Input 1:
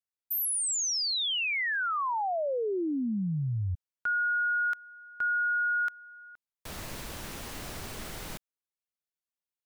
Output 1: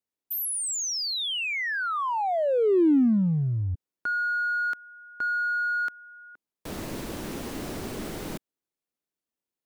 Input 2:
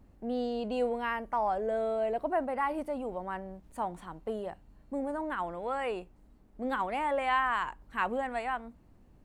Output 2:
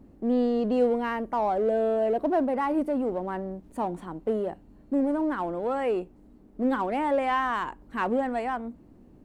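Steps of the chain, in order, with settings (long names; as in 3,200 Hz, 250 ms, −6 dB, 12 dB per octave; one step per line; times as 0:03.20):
parametric band 300 Hz +12.5 dB 2 octaves
in parallel at −10 dB: hard clipping −29.5 dBFS
on the sum: level −2 dB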